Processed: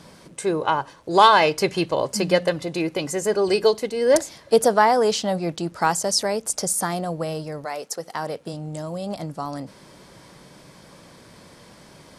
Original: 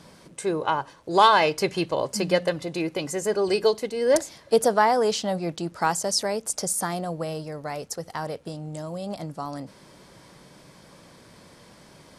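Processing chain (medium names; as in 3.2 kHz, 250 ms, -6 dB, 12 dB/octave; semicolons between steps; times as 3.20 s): 7.64–8.52 s: high-pass 440 Hz -> 110 Hz 12 dB/octave; trim +3 dB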